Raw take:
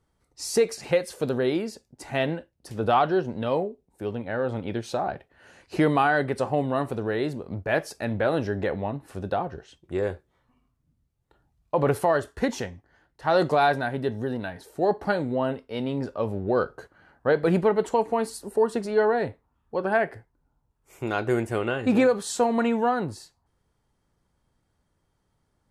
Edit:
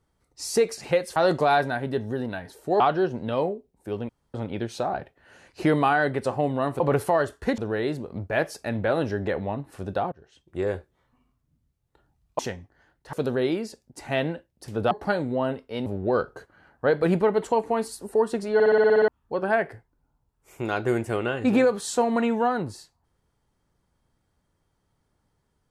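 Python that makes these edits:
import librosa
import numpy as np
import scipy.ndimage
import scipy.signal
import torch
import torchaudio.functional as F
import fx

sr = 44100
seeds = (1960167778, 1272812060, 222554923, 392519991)

y = fx.edit(x, sr, fx.swap(start_s=1.16, length_s=1.78, other_s=13.27, other_length_s=1.64),
    fx.room_tone_fill(start_s=4.23, length_s=0.25),
    fx.fade_in_from(start_s=9.48, length_s=0.48, floor_db=-24.0),
    fx.move(start_s=11.75, length_s=0.78, to_s=6.94),
    fx.cut(start_s=15.86, length_s=0.42),
    fx.stutter_over(start_s=18.96, slice_s=0.06, count=9), tone=tone)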